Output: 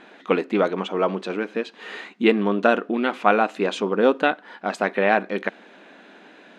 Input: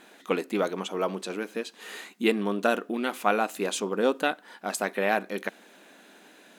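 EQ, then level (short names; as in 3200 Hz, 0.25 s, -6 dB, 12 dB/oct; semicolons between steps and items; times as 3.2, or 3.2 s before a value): LPF 3100 Hz 12 dB/oct; +6.5 dB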